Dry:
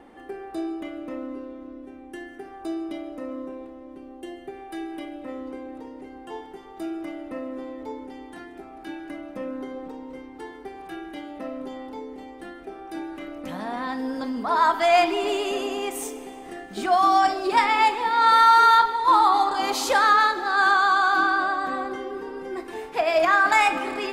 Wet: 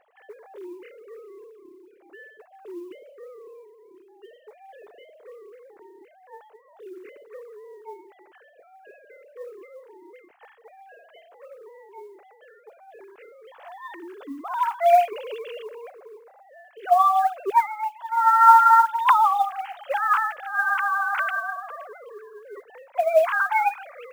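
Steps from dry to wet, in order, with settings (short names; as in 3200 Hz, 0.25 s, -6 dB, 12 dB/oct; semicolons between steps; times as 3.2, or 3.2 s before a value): sine-wave speech; 10.87–11.6 notches 60/120/180/240/300/360/420/480/540 Hz; 15.62–16.65 LPF 1800 Hz 24 dB/oct; 17.66–18.12 compressor 1.5:1, threshold -45 dBFS, peak gain reduction 12 dB; modulation noise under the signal 30 dB; gain -1 dB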